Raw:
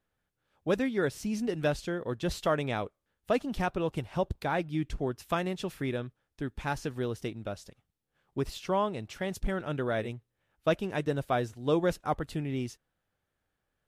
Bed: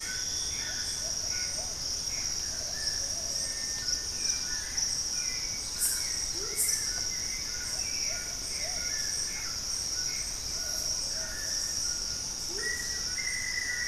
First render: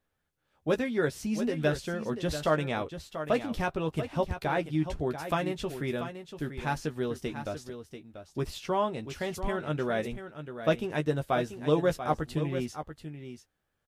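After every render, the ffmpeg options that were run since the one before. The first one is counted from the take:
-filter_complex "[0:a]asplit=2[a][b];[b]adelay=13,volume=-7dB[c];[a][c]amix=inputs=2:normalize=0,aecho=1:1:688:0.316"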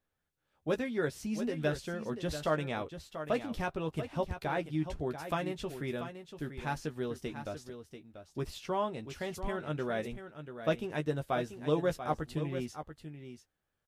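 -af "volume=-4.5dB"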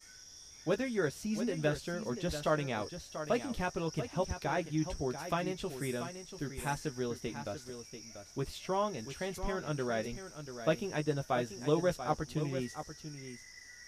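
-filter_complex "[1:a]volume=-20.5dB[a];[0:a][a]amix=inputs=2:normalize=0"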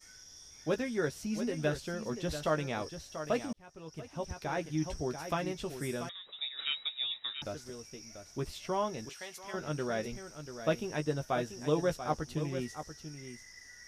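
-filter_complex "[0:a]asettb=1/sr,asplit=3[a][b][c];[a]atrim=end=6.094[d];[b]atrim=start=6.09:end=7.42,asetpts=PTS-STARTPTS,afade=t=in:d=0.004:c=qsin,afade=t=out:st=1.326:d=0.004:c=qsin,lowpass=f=3.3k:t=q:w=0.5098,lowpass=f=3.3k:t=q:w=0.6013,lowpass=f=3.3k:t=q:w=0.9,lowpass=f=3.3k:t=q:w=2.563,afreqshift=-3900[e];[c]atrim=start=7.416[f];[d][e]acrossfade=d=0.004:c1=hsin:c2=qsin[g];[g][f]acrossfade=d=0.004:c1=qsin:c2=hsin,asettb=1/sr,asplit=3[h][i][j];[h]atrim=end=9.094[k];[i]atrim=start=9.09:end=9.54,asetpts=PTS-STARTPTS,afade=t=in:d=0.004:c=qsin,afade=t=out:st=0.446:d=0.004:c=qsin,highpass=f=1.5k:p=1[l];[j]atrim=start=9.536[m];[k][l]acrossfade=d=0.004:c1=hsin:c2=qsin[n];[n][m]acrossfade=d=0.004:c1=qsin:c2=hsin,asplit=2[o][p];[o]atrim=end=3.53,asetpts=PTS-STARTPTS,afade=t=out:st=3.526:d=0.004:c=hsin[q];[p]atrim=start=3.53,asetpts=PTS-STARTPTS,afade=t=in:d=1.21[r];[q][r]concat=n=2:v=0:a=1"

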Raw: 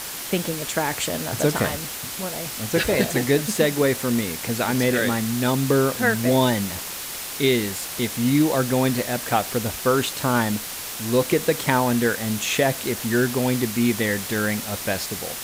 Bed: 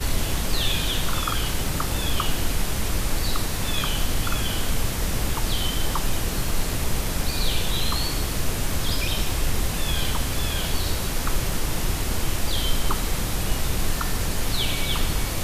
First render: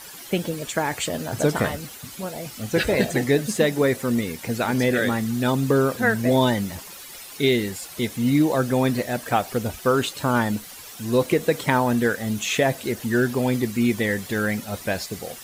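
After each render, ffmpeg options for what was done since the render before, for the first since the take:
-af "afftdn=nr=12:nf=-33"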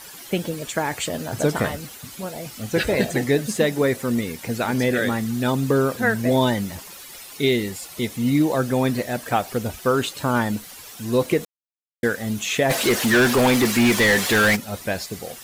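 -filter_complex "[0:a]asettb=1/sr,asplit=3[a][b][c];[a]atrim=end=7.334[d];[b]atrim=start=7.33:end=8.41,asetpts=PTS-STARTPTS,afade=t=in:d=0.004:c=qsin,afade=t=out:st=1.076:d=0.004:c=qsin,bandreject=f=1.6k:w=12[e];[c]atrim=start=8.406[f];[d][e]acrossfade=d=0.004:c1=hsin:c2=qsin[g];[g][f]acrossfade=d=0.004:c1=qsin:c2=hsin,asplit=3[h][i][j];[h]afade=t=out:st=12.69:d=0.02[k];[i]asplit=2[l][m];[m]highpass=f=720:p=1,volume=25dB,asoftclip=type=tanh:threshold=-9dB[n];[l][n]amix=inputs=2:normalize=0,lowpass=f=6k:p=1,volume=-6dB,afade=t=in:st=12.69:d=0.02,afade=t=out:st=14.55:d=0.02[o];[j]afade=t=in:st=14.55:d=0.02[p];[k][o][p]amix=inputs=3:normalize=0,asplit=3[q][r][s];[q]atrim=end=11.45,asetpts=PTS-STARTPTS,afade=t=out:st=11.446:d=0.004:c=hsin[t];[r]atrim=start=11.45:end=12.03,asetpts=PTS-STARTPTS,volume=0[u];[s]atrim=start=12.03,asetpts=PTS-STARTPTS,afade=t=in:d=0.004:c=hsin[v];[t][u][v]concat=n=3:v=0:a=1"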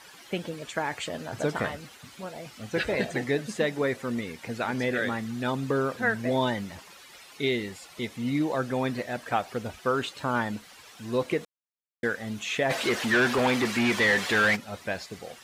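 -af "highpass=f=1.4k:p=1,aemphasis=mode=reproduction:type=riaa"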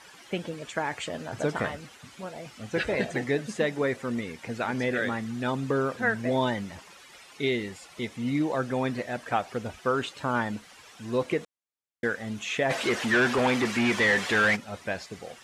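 -af "lowpass=10k,equalizer=f=4.2k:w=2.5:g=-3"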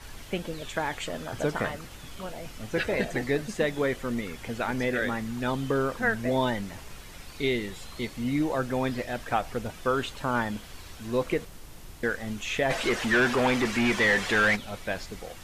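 -filter_complex "[1:a]volume=-21dB[a];[0:a][a]amix=inputs=2:normalize=0"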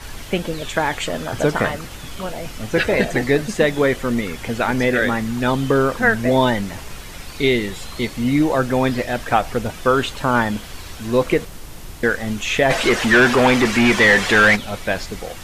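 -af "volume=10dB"

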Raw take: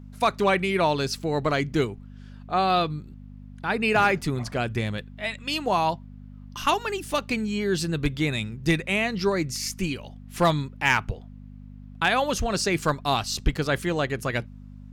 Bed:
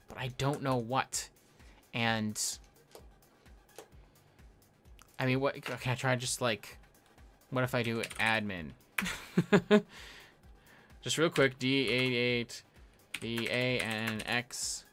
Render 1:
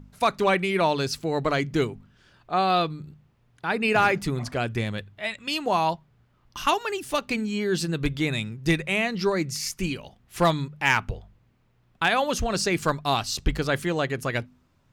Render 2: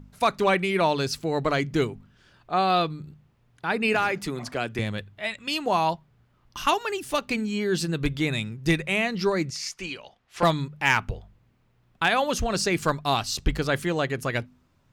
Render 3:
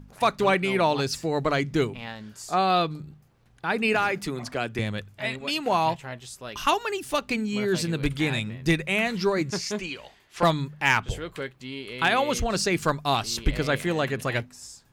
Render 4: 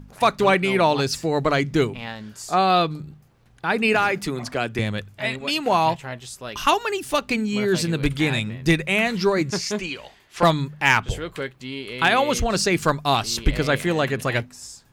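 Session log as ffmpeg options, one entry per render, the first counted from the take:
-af "bandreject=f=50:t=h:w=4,bandreject=f=100:t=h:w=4,bandreject=f=150:t=h:w=4,bandreject=f=200:t=h:w=4,bandreject=f=250:t=h:w=4"
-filter_complex "[0:a]asettb=1/sr,asplit=3[a][b][c];[a]atrim=end=3.944[d];[b]atrim=start=3.94:end=4.79,asetpts=PTS-STARTPTS,afade=t=in:d=0.004:c=qsin,afade=t=out:st=0.846:d=0.004:c=qsin,acrossover=split=190|1100[e][f][g];[e]acompressor=threshold=-44dB:ratio=4[h];[f]acompressor=threshold=-26dB:ratio=4[i];[g]acompressor=threshold=-24dB:ratio=4[j];[h][i][j]amix=inputs=3:normalize=0[k];[c]atrim=start=4.786[l];[d][k]acrossfade=d=0.004:c1=hsin:c2=qsin[m];[m][l]acrossfade=d=0.004:c1=qsin:c2=hsin,asettb=1/sr,asplit=3[n][o][p];[n]atrim=end=9.504[q];[o]atrim=start=9.5:end=10.43,asetpts=PTS-STARTPTS,afade=t=in:d=0.004:c=qsin,afade=t=out:st=0.926:d=0.004:c=qsin,acrossover=split=420 7200:gain=0.2 1 0.141[r][s][t];[r][s][t]amix=inputs=3:normalize=0[u];[p]atrim=start=10.426[v];[q][u]acrossfade=d=0.004:c1=hsin:c2=qsin[w];[w][v]acrossfade=d=0.004:c1=qsin:c2=hsin"
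-filter_complex "[1:a]volume=-7dB[a];[0:a][a]amix=inputs=2:normalize=0"
-af "volume=4dB"

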